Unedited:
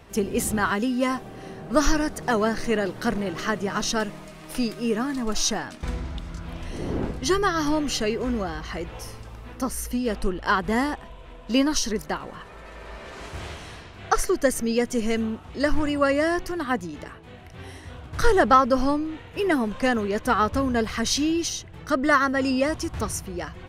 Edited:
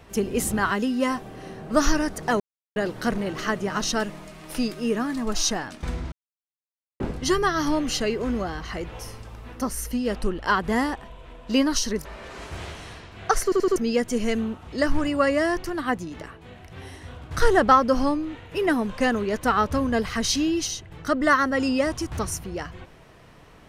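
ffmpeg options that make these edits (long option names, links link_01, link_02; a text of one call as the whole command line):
ffmpeg -i in.wav -filter_complex "[0:a]asplit=10[link_01][link_02][link_03][link_04][link_05][link_06][link_07][link_08][link_09][link_10];[link_01]atrim=end=2.4,asetpts=PTS-STARTPTS,afade=type=out:start_time=2.396:duration=0.004:curve=hsin[link_11];[link_02]atrim=start=2.4:end=2.76,asetpts=PTS-STARTPTS,volume=0[link_12];[link_03]atrim=start=2.76:end=6.12,asetpts=PTS-STARTPTS,afade=type=in:duration=0.004:curve=hsin,afade=type=out:start_time=3.356:duration=0.004:curve=hsin[link_13];[link_04]atrim=start=6.12:end=7,asetpts=PTS-STARTPTS,volume=0[link_14];[link_05]atrim=start=7:end=12.052,asetpts=PTS-STARTPTS,afade=type=in:duration=0.004:curve=hsin[link_15];[link_06]atrim=start=12.868:end=14.342[link_16];[link_07]atrim=start=14.258:end=14.342[link_17];[link_08]atrim=start=14.258:end=14.342[link_18];[link_09]atrim=start=14.258:end=14.342[link_19];[link_10]atrim=start=14.578[link_20];[link_11][link_12][link_13][link_14][link_15]concat=n=5:v=0:a=1[link_21];[link_21][link_16]acrossfade=duration=0.004:curve1=hsin:curve2=hsin[link_22];[link_22][link_17]acrossfade=duration=0.004:curve1=hsin:curve2=hsin[link_23];[link_23][link_18]acrossfade=duration=0.004:curve1=hsin:curve2=hsin[link_24];[link_24][link_19]acrossfade=duration=0.004:curve1=hsin:curve2=hsin[link_25];[link_25][link_20]acrossfade=duration=0.004:curve1=hsin:curve2=hsin" out.wav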